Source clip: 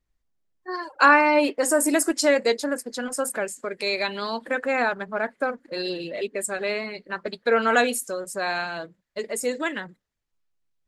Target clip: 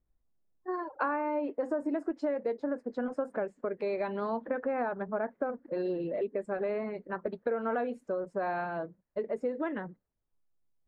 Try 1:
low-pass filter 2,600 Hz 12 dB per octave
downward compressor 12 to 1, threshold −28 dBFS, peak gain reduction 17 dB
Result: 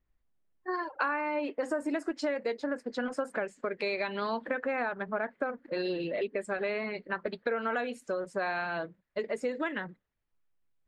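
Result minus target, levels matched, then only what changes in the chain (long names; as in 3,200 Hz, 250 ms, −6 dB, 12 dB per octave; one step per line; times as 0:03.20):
2,000 Hz band +6.5 dB
change: low-pass filter 950 Hz 12 dB per octave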